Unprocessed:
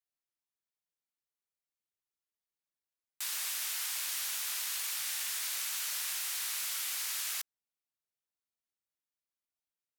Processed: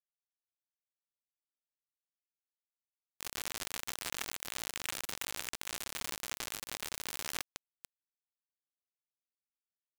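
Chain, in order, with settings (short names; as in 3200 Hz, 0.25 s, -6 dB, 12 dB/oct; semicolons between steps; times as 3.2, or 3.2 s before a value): on a send: thinning echo 0.196 s, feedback 58%, high-pass 240 Hz, level -14 dB; on the sum: added noise violet -54 dBFS; power-law curve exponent 0.5; LPF 3200 Hz 24 dB/oct; in parallel at 0 dB: negative-ratio compressor -51 dBFS, ratio -1; on the sum: bit-crush 5-bit; gain +4 dB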